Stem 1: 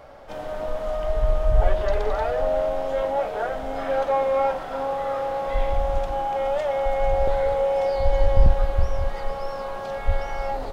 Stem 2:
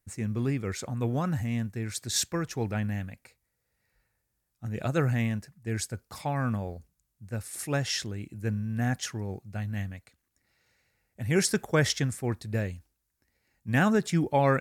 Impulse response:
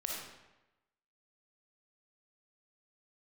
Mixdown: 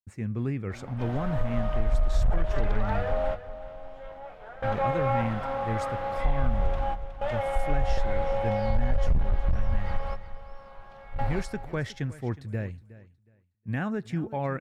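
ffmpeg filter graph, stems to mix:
-filter_complex "[0:a]equalizer=frequency=410:width_type=o:width=2.3:gain=-9.5,asoftclip=type=hard:threshold=-16dB,adelay=700,volume=1.5dB,asplit=2[link_01][link_02];[link_02]volume=-13.5dB[link_03];[1:a]agate=range=-33dB:threshold=-57dB:ratio=3:detection=peak,alimiter=limit=-20dB:level=0:latency=1:release=278,volume=-2dB,asplit=3[link_04][link_05][link_06];[link_05]volume=-18dB[link_07];[link_06]apad=whole_len=503818[link_08];[link_01][link_08]sidechaingate=range=-33dB:threshold=-60dB:ratio=16:detection=peak[link_09];[link_03][link_07]amix=inputs=2:normalize=0,aecho=0:1:366|732|1098:1|0.21|0.0441[link_10];[link_09][link_04][link_10]amix=inputs=3:normalize=0,bass=frequency=250:gain=2,treble=frequency=4000:gain=-14,acompressor=threshold=-19dB:ratio=5"

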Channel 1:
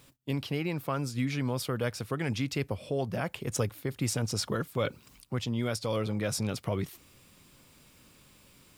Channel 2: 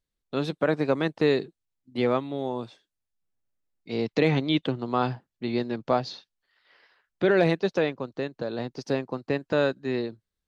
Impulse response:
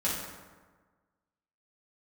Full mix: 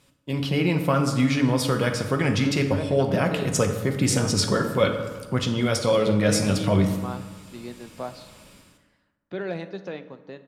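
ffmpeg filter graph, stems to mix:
-filter_complex "[0:a]bandreject=frequency=57.21:width_type=h:width=4,bandreject=frequency=114.42:width_type=h:width=4,bandreject=frequency=171.63:width_type=h:width=4,dynaudnorm=framelen=140:gausssize=5:maxgain=11dB,lowpass=11000,volume=-5dB,asplit=2[link_01][link_02];[link_02]volume=-8.5dB[link_03];[1:a]adelay=2100,volume=-11.5dB,asplit=2[link_04][link_05];[link_05]volume=-16.5dB[link_06];[2:a]atrim=start_sample=2205[link_07];[link_03][link_06]amix=inputs=2:normalize=0[link_08];[link_08][link_07]afir=irnorm=-1:irlink=0[link_09];[link_01][link_04][link_09]amix=inputs=3:normalize=0"

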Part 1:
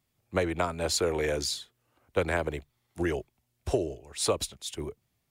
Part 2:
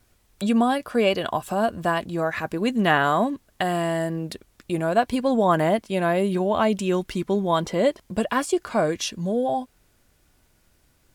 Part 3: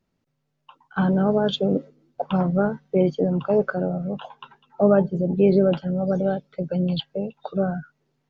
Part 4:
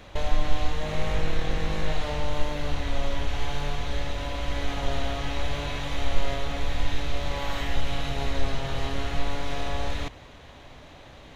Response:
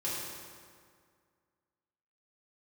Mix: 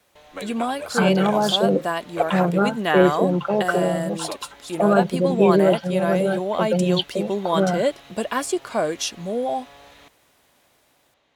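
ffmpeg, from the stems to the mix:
-filter_complex "[0:a]aphaser=in_gain=1:out_gain=1:delay=4.9:decay=0.68:speed=1:type=triangular,volume=-6.5dB[link_01];[1:a]equalizer=frequency=1500:width_type=o:width=2.3:gain=-4,volume=0dB[link_02];[2:a]aecho=1:1:5.8:0.65,volume=3dB[link_03];[3:a]volume=-15.5dB[link_04];[link_01][link_02][link_03][link_04]amix=inputs=4:normalize=0,highpass=frequency=460:poles=1,dynaudnorm=framelen=430:gausssize=5:maxgain=3.5dB"

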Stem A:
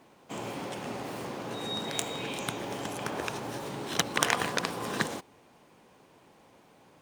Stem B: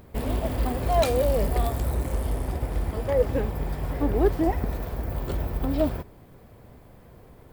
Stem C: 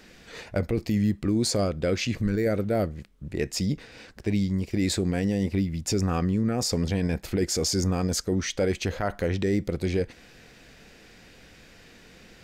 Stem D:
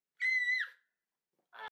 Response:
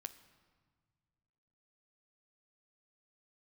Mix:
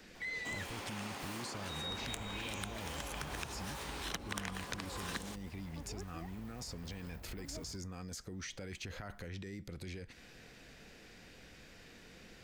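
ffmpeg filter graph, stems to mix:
-filter_complex "[0:a]highpass=frequency=410:poles=1,adelay=150,volume=0.5dB[link_01];[1:a]adelay=1750,volume=-19.5dB[link_02];[2:a]acompressor=threshold=-27dB:ratio=6,alimiter=level_in=3.5dB:limit=-24dB:level=0:latency=1:release=10,volume=-3.5dB,volume=-5dB[link_03];[3:a]volume=-4.5dB[link_04];[link_01][link_02][link_03][link_04]amix=inputs=4:normalize=0,acrossover=split=280|940|2500[link_05][link_06][link_07][link_08];[link_05]acompressor=threshold=-44dB:ratio=4[link_09];[link_06]acompressor=threshold=-55dB:ratio=4[link_10];[link_07]acompressor=threshold=-46dB:ratio=4[link_11];[link_08]acompressor=threshold=-45dB:ratio=4[link_12];[link_09][link_10][link_11][link_12]amix=inputs=4:normalize=0"

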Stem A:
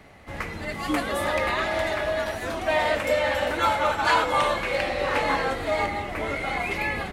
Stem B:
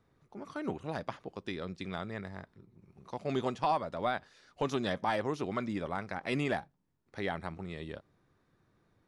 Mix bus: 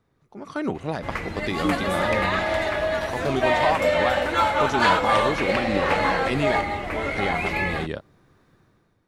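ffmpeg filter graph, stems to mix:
ffmpeg -i stem1.wav -i stem2.wav -filter_complex "[0:a]highshelf=frequency=9000:gain=-8,adelay=750,volume=-9dB[link_01];[1:a]alimiter=level_in=3.5dB:limit=-24dB:level=0:latency=1:release=422,volume=-3.5dB,volume=1.5dB[link_02];[link_01][link_02]amix=inputs=2:normalize=0,dynaudnorm=framelen=140:gausssize=7:maxgain=11dB" out.wav

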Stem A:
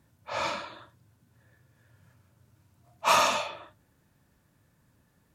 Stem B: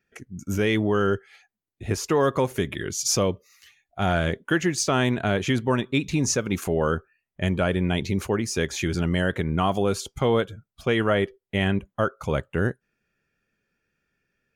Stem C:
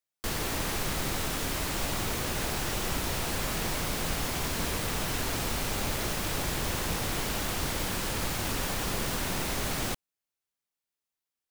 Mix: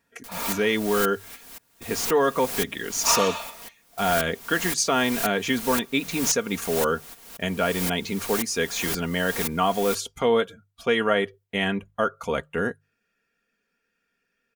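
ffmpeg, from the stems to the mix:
ffmpeg -i stem1.wav -i stem2.wav -i stem3.wav -filter_complex "[0:a]volume=-4dB[link_01];[1:a]bandreject=frequency=50:width_type=h:width=6,bandreject=frequency=100:width_type=h:width=6,bandreject=frequency=150:width_type=h:width=6,volume=1dB,asplit=2[link_02][link_03];[2:a]highshelf=frequency=7800:gain=11,aeval=exprs='val(0)*pow(10,-32*if(lt(mod(-1.9*n/s,1),2*abs(-1.9)/1000),1-mod(-1.9*n/s,1)/(2*abs(-1.9)/1000),(mod(-1.9*n/s,1)-2*abs(-1.9)/1000)/(1-2*abs(-1.9)/1000))/20)':channel_layout=same,volume=2dB[link_04];[link_03]apad=whole_len=507172[link_05];[link_04][link_05]sidechaingate=range=-14dB:threshold=-43dB:ratio=16:detection=peak[link_06];[link_01][link_02][link_06]amix=inputs=3:normalize=0,lowshelf=frequency=210:gain=-11.5,aecho=1:1:4.3:0.5" out.wav

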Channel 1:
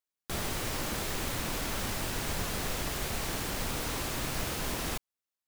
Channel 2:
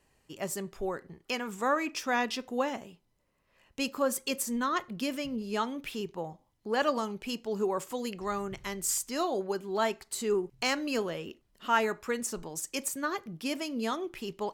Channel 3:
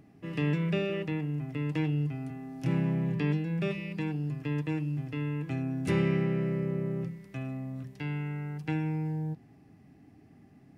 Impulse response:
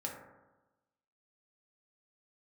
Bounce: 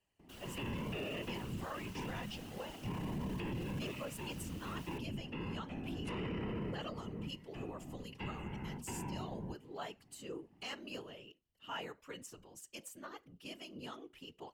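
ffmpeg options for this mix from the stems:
-filter_complex "[0:a]volume=-16dB[link_01];[1:a]volume=-10.5dB,asplit=2[link_02][link_03];[2:a]equalizer=frequency=950:width=4.4:gain=12.5,adelay=200,volume=0dB[link_04];[link_03]apad=whole_len=484046[link_05];[link_04][link_05]sidechaincompress=threshold=-42dB:ratio=8:attack=16:release=846[link_06];[link_01][link_02][link_06]amix=inputs=3:normalize=0,equalizer=frequency=2900:width_type=o:width=0.21:gain=11.5,afftfilt=real='hypot(re,im)*cos(2*PI*random(0))':imag='hypot(re,im)*sin(2*PI*random(1))':win_size=512:overlap=0.75,alimiter=level_in=8.5dB:limit=-24dB:level=0:latency=1:release=14,volume=-8.5dB"

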